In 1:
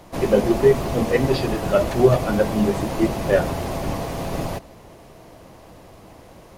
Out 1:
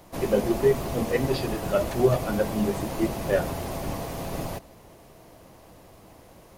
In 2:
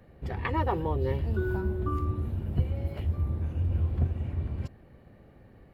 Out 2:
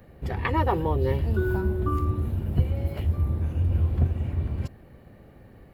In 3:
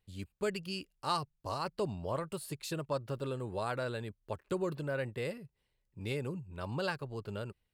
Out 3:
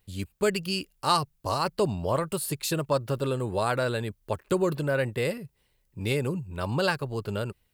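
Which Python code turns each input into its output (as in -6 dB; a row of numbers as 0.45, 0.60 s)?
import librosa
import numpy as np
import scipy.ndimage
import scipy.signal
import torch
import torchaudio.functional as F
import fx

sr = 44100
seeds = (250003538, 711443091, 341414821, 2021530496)

y = fx.high_shelf(x, sr, hz=9700.0, db=9.0)
y = librosa.util.normalize(y) * 10.0 ** (-9 / 20.0)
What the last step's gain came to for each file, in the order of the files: -6.0, +4.0, +9.5 dB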